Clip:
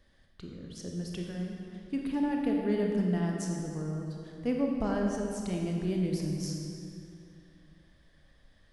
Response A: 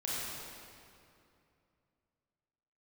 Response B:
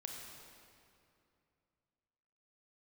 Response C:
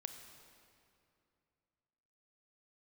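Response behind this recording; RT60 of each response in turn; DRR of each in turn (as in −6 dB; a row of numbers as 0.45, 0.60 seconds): B; 2.6, 2.6, 2.6 seconds; −7.5, 0.5, 6.5 decibels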